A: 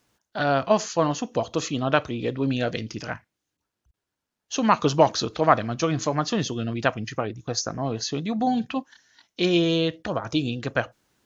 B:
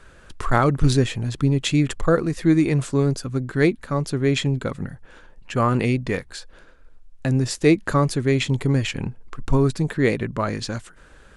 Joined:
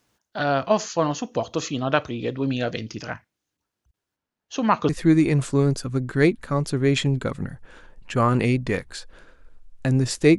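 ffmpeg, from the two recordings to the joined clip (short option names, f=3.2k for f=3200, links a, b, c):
-filter_complex "[0:a]asettb=1/sr,asplit=3[a][b][c];[a]atrim=end=4.164[d];[b]atrim=start=4.16:end=4.89,asetpts=PTS-STARTPTS,afade=t=in:d=0.004:c=qsin,afade=t=out:st=0.726:d=0.004:c=qsin,highshelf=f=4.3k:g=-10[e];[c]atrim=start=4.886[f];[d][e]acrossfade=d=0.004:c1=hsin:c2=qsin[g];[g][f]acrossfade=d=0.004:c1=qsin:c2=hsin,apad=whole_dur=10.38,atrim=end=10.38,atrim=end=4.892[h];[1:a]atrim=start=2.288:end=7.78[i];[h][i]acrossfade=d=0.004:c1=hsin:c2=hsin"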